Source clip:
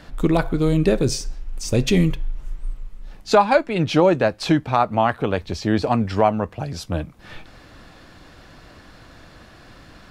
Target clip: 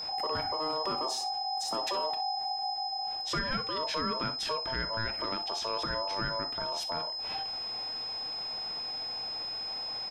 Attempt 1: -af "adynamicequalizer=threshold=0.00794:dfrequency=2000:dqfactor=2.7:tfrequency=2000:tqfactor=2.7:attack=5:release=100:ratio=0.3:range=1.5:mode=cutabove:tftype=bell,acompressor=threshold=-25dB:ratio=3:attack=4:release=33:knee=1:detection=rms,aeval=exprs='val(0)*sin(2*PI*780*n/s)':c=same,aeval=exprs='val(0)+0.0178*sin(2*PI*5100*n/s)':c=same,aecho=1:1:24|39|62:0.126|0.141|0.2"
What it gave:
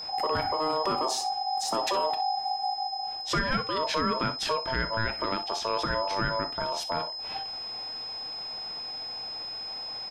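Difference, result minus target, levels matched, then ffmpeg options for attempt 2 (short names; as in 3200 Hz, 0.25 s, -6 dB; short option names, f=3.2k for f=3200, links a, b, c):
compressor: peak gain reduction -5.5 dB
-af "adynamicequalizer=threshold=0.00794:dfrequency=2000:dqfactor=2.7:tfrequency=2000:tqfactor=2.7:attack=5:release=100:ratio=0.3:range=1.5:mode=cutabove:tftype=bell,acompressor=threshold=-33.5dB:ratio=3:attack=4:release=33:knee=1:detection=rms,aeval=exprs='val(0)*sin(2*PI*780*n/s)':c=same,aeval=exprs='val(0)+0.0178*sin(2*PI*5100*n/s)':c=same,aecho=1:1:24|39|62:0.126|0.141|0.2"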